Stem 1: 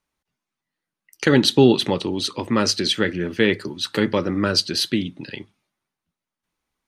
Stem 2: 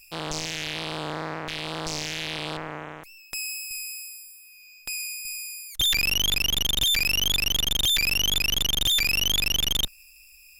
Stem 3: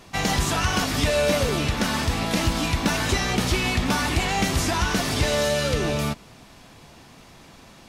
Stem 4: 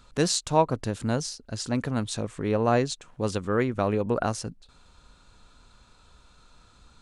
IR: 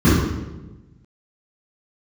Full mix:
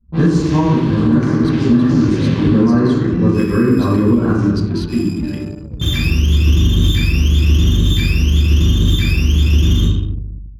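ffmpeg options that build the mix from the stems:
-filter_complex "[0:a]acompressor=threshold=-26dB:ratio=4,acrusher=bits=9:mix=0:aa=0.000001,volume=-5.5dB,asplit=3[a][b][c];[b]volume=-19.5dB[d];[1:a]agate=range=-33dB:threshold=-45dB:ratio=3:detection=peak,volume=-10.5dB,asplit=2[e][f];[f]volume=-5.5dB[g];[2:a]bass=f=250:g=15,treble=f=4k:g=-4,volume=-17dB[h];[3:a]equalizer=f=100:t=o:w=0.33:g=-9,equalizer=f=1k:t=o:w=0.33:g=6,equalizer=f=1.6k:t=o:w=0.33:g=8,volume=-12dB,asplit=2[i][j];[j]volume=-7dB[k];[c]apad=whole_len=467429[l];[e][l]sidechaincompress=threshold=-44dB:ratio=8:attack=5.1:release=723[m];[4:a]atrim=start_sample=2205[n];[d][g][k]amix=inputs=3:normalize=0[o];[o][n]afir=irnorm=-1:irlink=0[p];[a][m][h][i][p]amix=inputs=5:normalize=0,anlmdn=39.8,alimiter=limit=-4dB:level=0:latency=1:release=255"

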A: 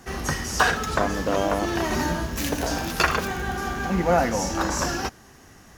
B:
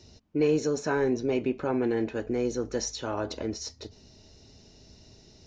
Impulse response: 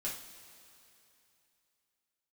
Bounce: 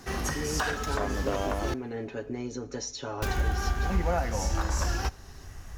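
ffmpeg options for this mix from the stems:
-filter_complex "[0:a]asubboost=boost=9:cutoff=74,volume=-1.5dB,asplit=3[a][b][c];[a]atrim=end=1.74,asetpts=PTS-STARTPTS,afade=t=out:st=1.736:d=0.004:c=hsin[d];[b]atrim=start=1.74:end=3.22,asetpts=PTS-STARTPTS,volume=0[e];[c]atrim=start=3.22,asetpts=PTS-STARTPTS,afade=t=in:d=0.004:c=hsin[f];[d][e][f]concat=n=3:v=0:a=1,asplit=2[g][h];[h]volume=-21dB[i];[1:a]aecho=1:1:7.2:0.85,acrossover=split=120[j][k];[k]acompressor=threshold=-32dB:ratio=2[l];[j][l]amix=inputs=2:normalize=0,volume=-3.5dB,asplit=2[m][n];[n]volume=-14dB[o];[2:a]atrim=start_sample=2205[p];[i][o]amix=inputs=2:normalize=0[q];[q][p]afir=irnorm=-1:irlink=0[r];[g][m][r]amix=inputs=3:normalize=0,alimiter=limit=-17.5dB:level=0:latency=1:release=491"

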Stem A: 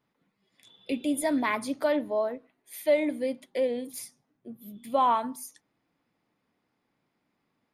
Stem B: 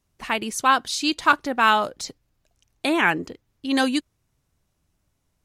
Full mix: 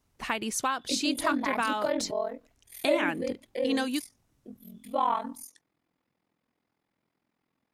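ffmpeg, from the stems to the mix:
-filter_complex "[0:a]aeval=exprs='val(0)*sin(2*PI*21*n/s)':c=same,volume=-0.5dB[a];[1:a]acompressor=threshold=-25dB:ratio=6,volume=-1dB[b];[a][b]amix=inputs=2:normalize=0"

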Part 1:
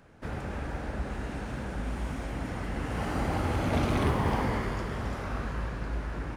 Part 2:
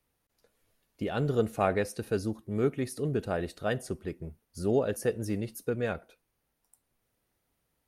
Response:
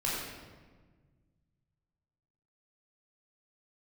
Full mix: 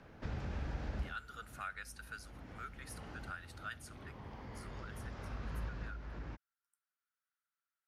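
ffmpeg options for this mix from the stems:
-filter_complex "[0:a]lowpass=f=6k:w=0.5412,lowpass=f=6k:w=1.3066,acompressor=threshold=-34dB:ratio=3,volume=-0.5dB[a];[1:a]highpass=f=1.4k:t=q:w=6.8,volume=-9dB,afade=t=out:st=4.45:d=0.56:silence=0.281838,asplit=2[b][c];[c]apad=whole_len=280756[d];[a][d]sidechaincompress=threshold=-49dB:ratio=4:attack=5:release=1370[e];[e][b]amix=inputs=2:normalize=0,acrossover=split=170|3000[f][g][h];[g]acompressor=threshold=-52dB:ratio=2[i];[f][i][h]amix=inputs=3:normalize=0"

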